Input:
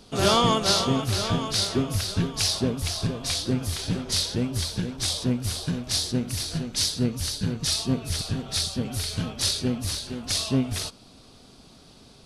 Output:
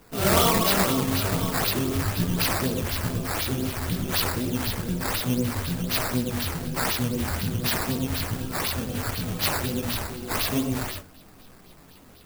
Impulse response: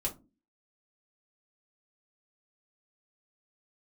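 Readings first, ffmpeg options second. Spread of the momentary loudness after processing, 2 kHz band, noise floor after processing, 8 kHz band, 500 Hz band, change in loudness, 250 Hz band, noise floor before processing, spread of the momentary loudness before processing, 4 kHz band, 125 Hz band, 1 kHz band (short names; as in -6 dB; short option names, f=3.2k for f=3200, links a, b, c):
8 LU, +6.5 dB, -50 dBFS, -2.0 dB, +0.5 dB, 0.0 dB, +0.5 dB, -52 dBFS, 7 LU, -4.0 dB, 0.0 dB, +2.0 dB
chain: -filter_complex "[0:a]asplit=2[a][b];[1:a]atrim=start_sample=2205,adelay=91[c];[b][c]afir=irnorm=-1:irlink=0,volume=-5.5dB[d];[a][d]amix=inputs=2:normalize=0,flanger=delay=16:depth=6.7:speed=1.3,acrusher=samples=10:mix=1:aa=0.000001:lfo=1:lforange=10:lforate=4,highshelf=f=8.2k:g=11"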